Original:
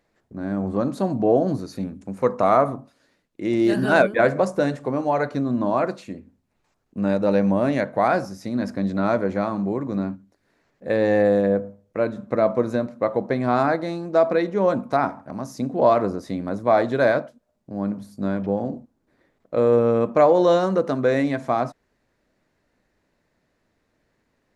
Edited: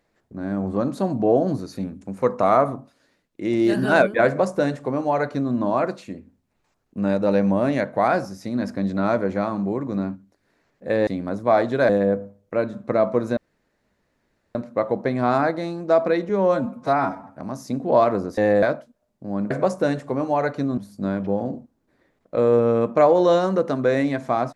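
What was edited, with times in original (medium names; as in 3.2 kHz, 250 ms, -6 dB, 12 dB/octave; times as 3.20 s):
4.27–5.54 s: copy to 17.97 s
11.07–11.32 s: swap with 16.27–17.09 s
12.80 s: insert room tone 1.18 s
14.54–15.25 s: stretch 1.5×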